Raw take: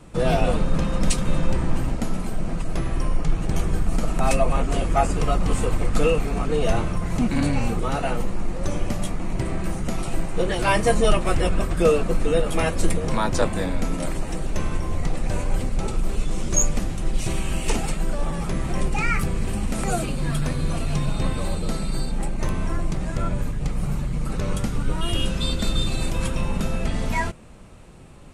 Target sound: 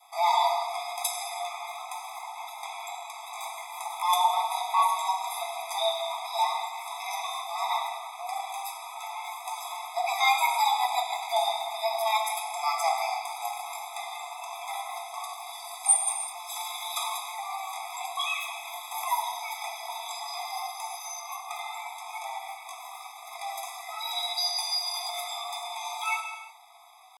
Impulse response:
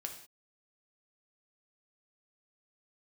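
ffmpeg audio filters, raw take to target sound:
-filter_complex "[0:a]adynamicequalizer=threshold=0.00708:dfrequency=1100:dqfactor=1.9:tfrequency=1100:tqfactor=1.9:attack=5:release=100:ratio=0.375:range=3:mode=cutabove:tftype=bell,acrossover=split=350[link_01][link_02];[link_01]acompressor=threshold=-27dB:ratio=2.5[link_03];[link_03][link_02]amix=inputs=2:normalize=0,asetrate=57191,aresample=44100,atempo=0.771105,acrossover=split=390|3800[link_04][link_05][link_06];[link_04]asoftclip=type=tanh:threshold=-17dB[link_07];[link_07][link_05][link_06]amix=inputs=3:normalize=0[link_08];[1:a]atrim=start_sample=2205,asetrate=22491,aresample=44100[link_09];[link_08][link_09]afir=irnorm=-1:irlink=0,asetrate=45938,aresample=44100,afftfilt=real='re*eq(mod(floor(b*sr/1024/660),2),1)':imag='im*eq(mod(floor(b*sr/1024/660),2),1)':win_size=1024:overlap=0.75"

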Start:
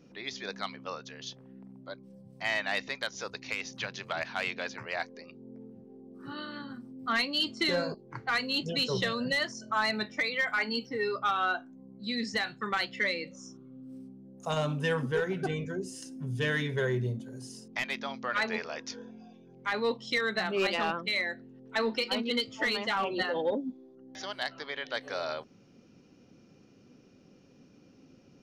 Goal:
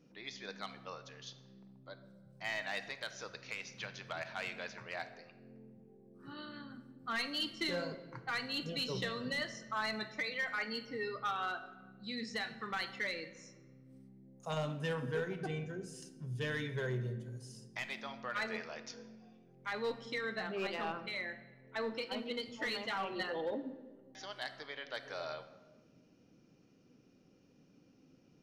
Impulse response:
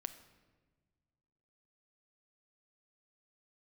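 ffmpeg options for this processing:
-filter_complex "[0:a]asettb=1/sr,asplit=3[link_01][link_02][link_03];[link_01]atrim=end=20.054[link_04];[link_02]atrim=start=20.05:end=22.43,asetpts=PTS-STARTPTS,afade=type=in:duration=0.004:curve=qsin,afade=type=out:start_time=2.376:duration=0.004:curve=qsin,highshelf=frequency=2700:gain=-6[link_05];[link_03]atrim=start=22.426[link_06];[link_04][link_05]acrossfade=duration=0.004:curve1=hsin:curve2=qsin[link_07];[link_07][link_06]acrossfade=duration=0.004:curve1=qsin:curve2=hsin,asoftclip=type=hard:threshold=-22.5dB[link_08];[1:a]atrim=start_sample=2205[link_09];[link_08][link_09]afir=irnorm=-1:irlink=0,volume=-5dB"

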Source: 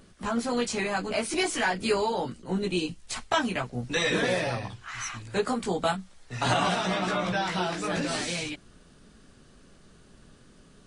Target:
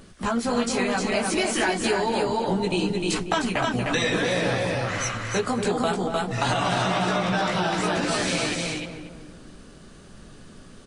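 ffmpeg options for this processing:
ffmpeg -i in.wav -filter_complex "[0:a]asplit=2[link_01][link_02];[link_02]aecho=0:1:305:0.596[link_03];[link_01][link_03]amix=inputs=2:normalize=0,acompressor=threshold=-28dB:ratio=4,asplit=2[link_04][link_05];[link_05]adelay=235,lowpass=frequency=1200:poles=1,volume=-6dB,asplit=2[link_06][link_07];[link_07]adelay=235,lowpass=frequency=1200:poles=1,volume=0.48,asplit=2[link_08][link_09];[link_09]adelay=235,lowpass=frequency=1200:poles=1,volume=0.48,asplit=2[link_10][link_11];[link_11]adelay=235,lowpass=frequency=1200:poles=1,volume=0.48,asplit=2[link_12][link_13];[link_13]adelay=235,lowpass=frequency=1200:poles=1,volume=0.48,asplit=2[link_14][link_15];[link_15]adelay=235,lowpass=frequency=1200:poles=1,volume=0.48[link_16];[link_06][link_08][link_10][link_12][link_14][link_16]amix=inputs=6:normalize=0[link_17];[link_04][link_17]amix=inputs=2:normalize=0,volume=6.5dB" out.wav

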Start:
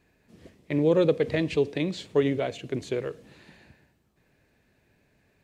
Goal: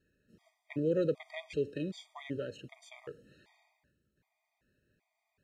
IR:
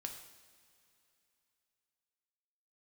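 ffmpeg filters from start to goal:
-af "afftfilt=real='re*gt(sin(2*PI*1.3*pts/sr)*(1-2*mod(floor(b*sr/1024/630),2)),0)':imag='im*gt(sin(2*PI*1.3*pts/sr)*(1-2*mod(floor(b*sr/1024/630),2)),0)':win_size=1024:overlap=0.75,volume=-8.5dB"

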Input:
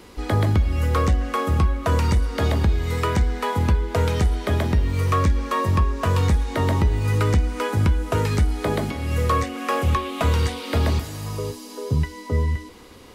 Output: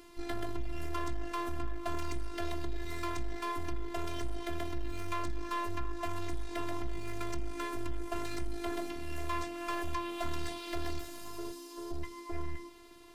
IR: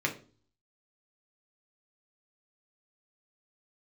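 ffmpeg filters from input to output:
-af "aeval=exprs='(tanh(14.1*val(0)+0.5)-tanh(0.5))/14.1':channel_layout=same,afftfilt=real='hypot(re,im)*cos(PI*b)':imag='0':win_size=512:overlap=0.75,volume=-4dB"

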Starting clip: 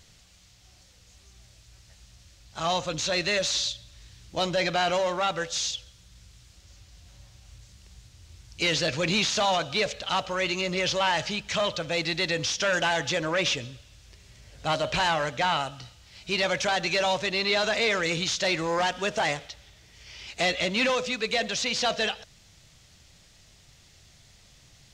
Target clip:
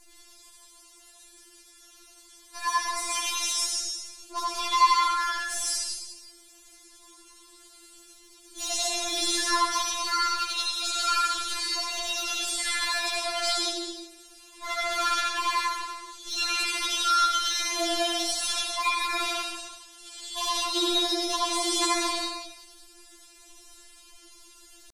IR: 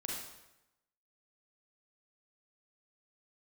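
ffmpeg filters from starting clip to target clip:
-filter_complex "[0:a]asplit=2[link_01][link_02];[link_02]acompressor=threshold=-38dB:ratio=16,volume=0dB[link_03];[link_01][link_03]amix=inputs=2:normalize=0,asetrate=64194,aresample=44100,atempo=0.686977,aeval=exprs='0.224*(cos(1*acos(clip(val(0)/0.224,-1,1)))-cos(1*PI/2))+0.0794*(cos(2*acos(clip(val(0)/0.224,-1,1)))-cos(2*PI/2))+0.00178*(cos(4*acos(clip(val(0)/0.224,-1,1)))-cos(4*PI/2))+0.01*(cos(5*acos(clip(val(0)/0.224,-1,1)))-cos(5*PI/2))+0.0178*(cos(8*acos(clip(val(0)/0.224,-1,1)))-cos(8*PI/2))':channel_layout=same[link_04];[1:a]atrim=start_sample=2205,afade=type=out:start_time=0.36:duration=0.01,atrim=end_sample=16317,asetrate=24255,aresample=44100[link_05];[link_04][link_05]afir=irnorm=-1:irlink=0,afftfilt=real='re*4*eq(mod(b,16),0)':imag='im*4*eq(mod(b,16),0)':win_size=2048:overlap=0.75,volume=-4.5dB"

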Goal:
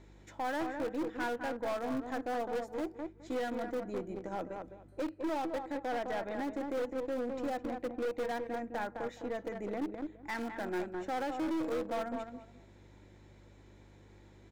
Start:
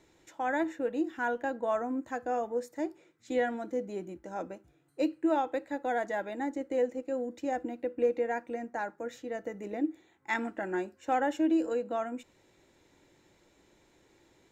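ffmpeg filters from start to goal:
ffmpeg -i in.wav -filter_complex "[0:a]asplit=2[link_01][link_02];[link_02]acrusher=bits=4:mix=0:aa=0.000001,volume=-8dB[link_03];[link_01][link_03]amix=inputs=2:normalize=0,aeval=exprs='val(0)+0.00112*(sin(2*PI*50*n/s)+sin(2*PI*2*50*n/s)/2+sin(2*PI*3*50*n/s)/3+sin(2*PI*4*50*n/s)/4+sin(2*PI*5*50*n/s)/5)':channel_layout=same,alimiter=level_in=2.5dB:limit=-24dB:level=0:latency=1:release=451,volume=-2.5dB,asplit=2[link_04][link_05];[link_05]adelay=209,lowpass=frequency=1600:poles=1,volume=-7.5dB,asplit=2[link_06][link_07];[link_07]adelay=209,lowpass=frequency=1600:poles=1,volume=0.22,asplit=2[link_08][link_09];[link_09]adelay=209,lowpass=frequency=1600:poles=1,volume=0.22[link_10];[link_06][link_08][link_10]amix=inputs=3:normalize=0[link_11];[link_04][link_11]amix=inputs=2:normalize=0,aeval=exprs='0.119*(cos(1*acos(clip(val(0)/0.119,-1,1)))-cos(1*PI/2))+0.0422*(cos(2*acos(clip(val(0)/0.119,-1,1)))-cos(2*PI/2))+0.00841*(cos(6*acos(clip(val(0)/0.119,-1,1)))-cos(6*PI/2))':channel_layout=same,highshelf=frequency=5400:gain=-10.5,asettb=1/sr,asplit=3[link_12][link_13][link_14];[link_12]atrim=end=5.714[link_15];[link_13]atrim=start=5.71:end=6.31,asetpts=PTS-STARTPTS,afade=type=in:duration=0.004:curve=qsin,afade=type=out:start_time=0.596:duration=0.004:curve=qsin,acrossover=split=2500[link_16][link_17];[link_17]acompressor=threshold=-59dB:ratio=4:attack=1:release=60[link_18];[link_16][link_18]amix=inputs=2:normalize=0[link_19];[link_14]atrim=start=6.306[link_20];[link_15][link_19]acrossfade=duration=0.004:curve1=hsin:curve2=qsin[link_21];[link_21][link_20]acrossfade=duration=0.004:curve1=qsin:curve2=hsin,asoftclip=type=hard:threshold=-32dB,bandreject=frequency=2800:width=22,volume=2.5dB" out.wav

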